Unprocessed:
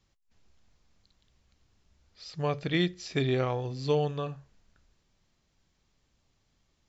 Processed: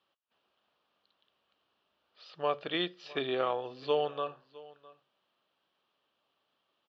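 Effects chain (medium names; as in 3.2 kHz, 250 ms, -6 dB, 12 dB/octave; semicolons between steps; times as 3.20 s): cabinet simulation 440–3600 Hz, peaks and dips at 590 Hz +3 dB, 1.2 kHz +5 dB, 2.1 kHz -9 dB, 3 kHz +6 dB; delay 658 ms -21 dB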